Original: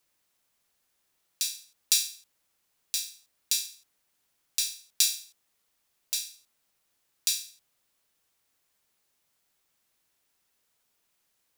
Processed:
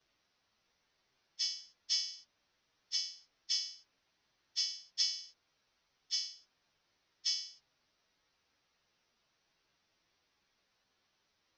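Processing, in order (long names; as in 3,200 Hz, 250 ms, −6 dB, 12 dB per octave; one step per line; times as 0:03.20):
partials spread apart or drawn together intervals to 110%
downward compressor 3 to 1, threshold −31 dBFS, peak gain reduction 7.5 dB
Chebyshev low-pass filter 5,900 Hz, order 6
level +7.5 dB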